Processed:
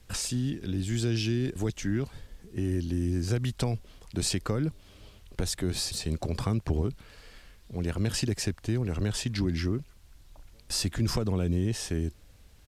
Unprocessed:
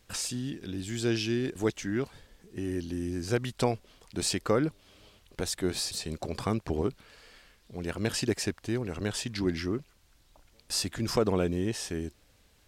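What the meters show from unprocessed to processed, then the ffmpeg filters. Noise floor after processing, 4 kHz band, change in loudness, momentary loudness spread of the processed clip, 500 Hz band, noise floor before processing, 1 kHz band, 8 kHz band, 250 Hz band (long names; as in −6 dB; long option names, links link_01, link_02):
−55 dBFS, +0.5 dB, +1.0 dB, 7 LU, −4.0 dB, −64 dBFS, −4.5 dB, +0.5 dB, +0.5 dB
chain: -filter_complex "[0:a]lowshelf=frequency=150:gain=11.5,asplit=2[link_01][link_02];[link_02]alimiter=limit=-20dB:level=0:latency=1,volume=2.5dB[link_03];[link_01][link_03]amix=inputs=2:normalize=0,acrossover=split=220|3000[link_04][link_05][link_06];[link_05]acompressor=threshold=-24dB:ratio=6[link_07];[link_04][link_07][link_06]amix=inputs=3:normalize=0,acrusher=bits=9:mix=0:aa=0.000001,aresample=32000,aresample=44100,volume=-6.5dB"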